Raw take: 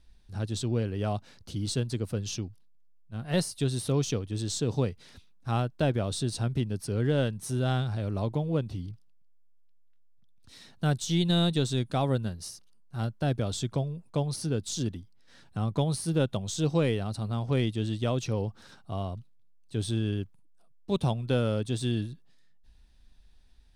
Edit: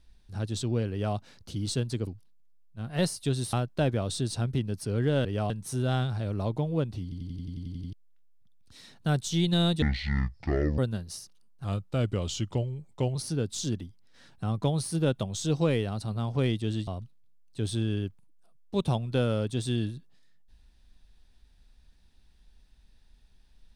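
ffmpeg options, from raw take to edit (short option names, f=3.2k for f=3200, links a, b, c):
-filter_complex "[0:a]asplit=20[a][b][c][d][e][f][g][h][i][j][k][l][m][n][o][p][q][r][s][t];[a]atrim=end=2.072[u];[b]atrim=start=2.418:end=3.882[v];[c]atrim=start=5.548:end=7.272[w];[d]atrim=start=0.908:end=1.162[x];[e]atrim=start=7.268:end=8.892[y];[f]atrim=start=8.798:end=8.892[z];[g]atrim=start=8.798:end=8.892[aa];[h]atrim=start=8.798:end=8.892[ab];[i]atrim=start=8.798:end=8.892[ac];[j]atrim=start=8.798:end=8.892[ad];[k]atrim=start=8.798:end=8.892[ae];[l]atrim=start=8.798:end=8.892[af];[m]atrim=start=8.798:end=8.892[ag];[n]atrim=start=8.798:end=8.892[ah];[o]atrim=start=9.698:end=11.594[ai];[p]atrim=start=11.59:end=12.1,asetpts=PTS-STARTPTS,asetrate=23373,aresample=44100[aj];[q]atrim=start=12.096:end=12.964[ak];[r]atrim=start=12.96:end=14.29,asetpts=PTS-STARTPTS,asetrate=38808,aresample=44100,atrim=end_sample=66651,asetpts=PTS-STARTPTS[al];[s]atrim=start=14.286:end=18.012[am];[t]atrim=start=19.028[an];[u][v]acrossfade=d=0.004:c1=hsin:c2=hsin[ao];[ao][w]acrossfade=d=0.004:c1=hsin:c2=hsin[ap];[ap][x]acrossfade=d=0.004:c1=hsin:c2=hsin[aq];[aq][y]acrossfade=d=0.004:c1=hsin:c2=hsin[ar];[ar][z]acrossfade=d=0.004:c1=hsin:c2=hsin[as];[as][aa]acrossfade=d=0.004:c1=hsin:c2=hsin[at];[at][ab]acrossfade=d=0.004:c1=hsin:c2=hsin[au];[au][ac]acrossfade=d=0.004:c1=hsin:c2=hsin[av];[av][ad]acrossfade=d=0.004:c1=hsin:c2=hsin[aw];[aw][ae]acrossfade=d=0.004:c1=hsin:c2=hsin[ax];[ax][af]acrossfade=d=0.004:c1=hsin:c2=hsin[ay];[ay][ag]acrossfade=d=0.004:c1=hsin:c2=hsin[az];[az][ah]acrossfade=d=0.004:c1=hsin:c2=hsin[ba];[ba][ai]acrossfade=d=0.004:c1=hsin:c2=hsin[bb];[bb][aj]acrossfade=d=0.004:c1=hsin:c2=hsin[bc];[bc][ak]acrossfade=d=0.004:c1=hsin:c2=hsin[bd];[bd][al]acrossfade=d=0.004:c1=hsin:c2=hsin[be];[be][am]acrossfade=d=0.004:c1=hsin:c2=hsin[bf];[bf][an]acrossfade=d=0.004:c1=hsin:c2=hsin"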